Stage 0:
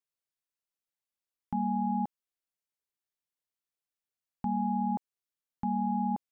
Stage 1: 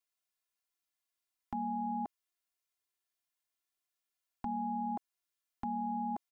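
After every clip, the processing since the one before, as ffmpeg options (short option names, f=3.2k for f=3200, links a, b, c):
-filter_complex "[0:a]aecho=1:1:2.9:0.76,acrossover=split=630[a][b];[b]acontrast=76[c];[a][c]amix=inputs=2:normalize=0,volume=-5.5dB"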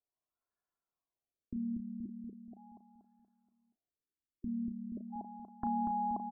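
-filter_complex "[0:a]asplit=2[a][b];[b]adelay=34,volume=-10.5dB[c];[a][c]amix=inputs=2:normalize=0,asplit=2[d][e];[e]adelay=238,lowpass=f=800:p=1,volume=-4dB,asplit=2[f][g];[g]adelay=238,lowpass=f=800:p=1,volume=0.52,asplit=2[h][i];[i]adelay=238,lowpass=f=800:p=1,volume=0.52,asplit=2[j][k];[k]adelay=238,lowpass=f=800:p=1,volume=0.52,asplit=2[l][m];[m]adelay=238,lowpass=f=800:p=1,volume=0.52,asplit=2[n][o];[o]adelay=238,lowpass=f=800:p=1,volume=0.52,asplit=2[p][q];[q]adelay=238,lowpass=f=800:p=1,volume=0.52[r];[d][f][h][j][l][n][p][r]amix=inputs=8:normalize=0,afftfilt=real='re*lt(b*sr/1024,360*pow(1800/360,0.5+0.5*sin(2*PI*0.39*pts/sr)))':imag='im*lt(b*sr/1024,360*pow(1800/360,0.5+0.5*sin(2*PI*0.39*pts/sr)))':win_size=1024:overlap=0.75,volume=1.5dB"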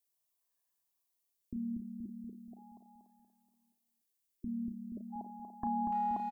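-filter_complex "[0:a]crystalizer=i=3.5:c=0,asuperstop=centerf=1400:order=4:qfactor=5.7,asplit=2[a][b];[b]adelay=290,highpass=300,lowpass=3.4k,asoftclip=type=hard:threshold=-32.5dB,volume=-9dB[c];[a][c]amix=inputs=2:normalize=0,volume=-1dB"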